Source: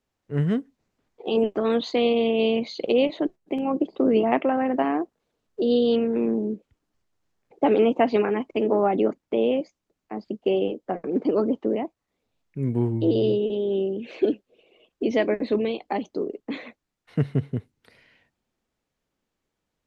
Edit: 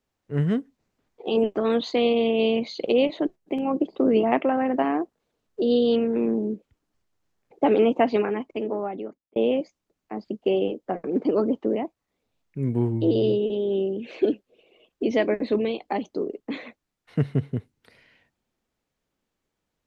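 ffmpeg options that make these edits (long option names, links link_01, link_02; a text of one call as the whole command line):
ffmpeg -i in.wav -filter_complex "[0:a]asplit=2[link_01][link_02];[link_01]atrim=end=9.36,asetpts=PTS-STARTPTS,afade=type=out:start_time=8:duration=1.36[link_03];[link_02]atrim=start=9.36,asetpts=PTS-STARTPTS,afade=type=in:duration=0.004:curve=hsin[link_04];[link_03][link_04]concat=n=2:v=0:a=1" out.wav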